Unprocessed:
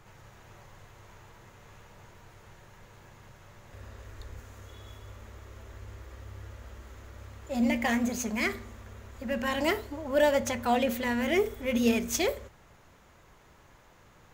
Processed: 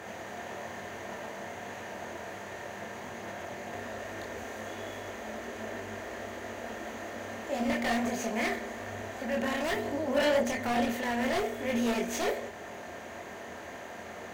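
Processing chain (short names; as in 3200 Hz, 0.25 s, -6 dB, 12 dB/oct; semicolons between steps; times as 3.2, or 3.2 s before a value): per-bin compression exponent 0.6; HPF 76 Hz 24 dB/oct; high shelf 6700 Hz -5 dB; notch 5300 Hz, Q 15; in parallel at -2 dB: compressor, threshold -35 dBFS, peak gain reduction 16.5 dB; on the sum: whine 1600 Hz -48 dBFS; small resonant body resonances 680/1800 Hz, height 9 dB, ringing for 45 ms; wavefolder -16 dBFS; chorus voices 4, 1.1 Hz, delay 24 ms, depth 3 ms; gain -4.5 dB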